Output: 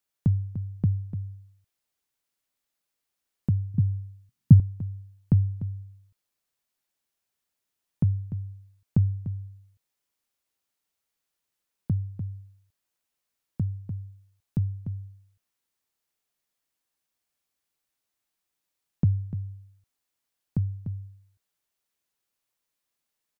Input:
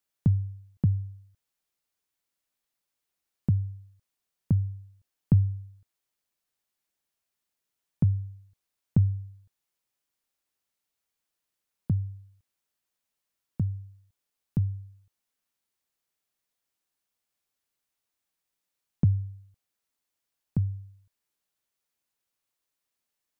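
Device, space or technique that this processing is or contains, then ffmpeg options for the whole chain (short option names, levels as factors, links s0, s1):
ducked delay: -filter_complex "[0:a]asplit=3[s0][s1][s2];[s1]adelay=296,volume=0.562[s3];[s2]apad=whole_len=1044668[s4];[s3][s4]sidechaincompress=threshold=0.0282:ratio=8:attack=16:release=565[s5];[s0][s5]amix=inputs=2:normalize=0,asettb=1/sr,asplit=3[s6][s7][s8];[s6]atrim=end=3.744[s9];[s7]atrim=start=3.74:end=4.6,asetpts=PTS-STARTPTS,afade=t=in:d=0.004:c=qsin,afade=t=out:st=0.856:d=0.004:c=qsin,equalizer=f=125:t=o:w=1:g=12,equalizer=f=250:t=o:w=1:g=10,equalizer=f=500:t=o:w=1:g=-9[s10];[s8]atrim=start=4.596[s11];[s9][s10]acrossfade=d=0.004:c1=hsin:c2=qsin[s12];[s12][s11]acrossfade=d=0.004:c1=qsin:c2=hsin"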